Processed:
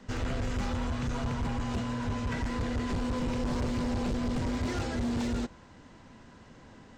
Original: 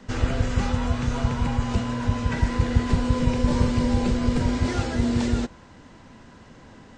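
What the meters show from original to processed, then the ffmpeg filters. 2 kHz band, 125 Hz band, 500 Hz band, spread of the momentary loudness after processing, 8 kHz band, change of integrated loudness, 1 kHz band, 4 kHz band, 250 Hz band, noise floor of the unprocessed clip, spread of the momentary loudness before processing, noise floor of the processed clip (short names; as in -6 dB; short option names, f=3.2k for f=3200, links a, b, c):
-6.5 dB, -9.5 dB, -7.0 dB, 2 LU, -6.5 dB, -8.0 dB, -6.5 dB, -6.5 dB, -7.5 dB, -49 dBFS, 4 LU, -54 dBFS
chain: -af "asoftclip=type=hard:threshold=-22.5dB,volume=-5dB"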